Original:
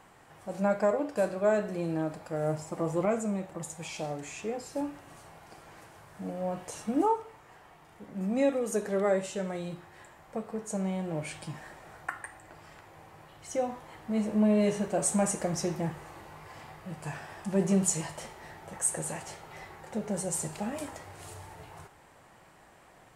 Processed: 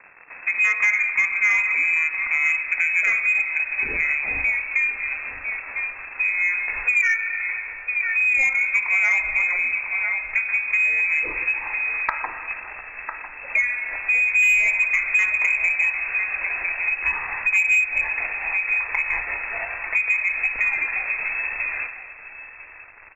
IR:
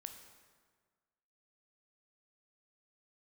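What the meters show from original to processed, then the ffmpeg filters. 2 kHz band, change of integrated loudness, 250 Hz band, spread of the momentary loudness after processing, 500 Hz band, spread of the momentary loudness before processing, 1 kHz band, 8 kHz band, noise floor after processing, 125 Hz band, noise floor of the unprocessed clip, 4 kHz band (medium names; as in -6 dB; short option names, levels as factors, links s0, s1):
+27.5 dB, +11.5 dB, under -20 dB, 11 LU, -14.0 dB, 20 LU, +2.0 dB, -7.0 dB, -40 dBFS, under -15 dB, -57 dBFS, no reading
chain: -filter_complex "[0:a]lowshelf=f=240:g=6,aeval=exprs='sgn(val(0))*max(abs(val(0))-0.002,0)':c=same,asplit=2[s0][s1];[1:a]atrim=start_sample=2205[s2];[s1][s2]afir=irnorm=-1:irlink=0,volume=2.51[s3];[s0][s3]amix=inputs=2:normalize=0,lowpass=f=2300:t=q:w=0.5098,lowpass=f=2300:t=q:w=0.6013,lowpass=f=2300:t=q:w=0.9,lowpass=f=2300:t=q:w=2.563,afreqshift=-2700,aecho=1:1:1000:0.188,acontrast=75,asubboost=boost=9:cutoff=54,acompressor=threshold=0.0501:ratio=3,volume=1.68"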